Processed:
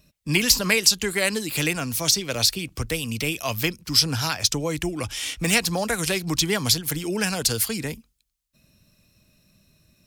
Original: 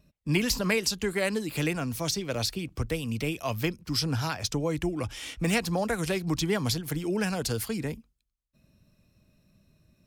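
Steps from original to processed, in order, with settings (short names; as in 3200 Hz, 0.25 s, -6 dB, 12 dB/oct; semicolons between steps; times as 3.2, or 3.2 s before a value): high shelf 2000 Hz +11 dB; gain +1.5 dB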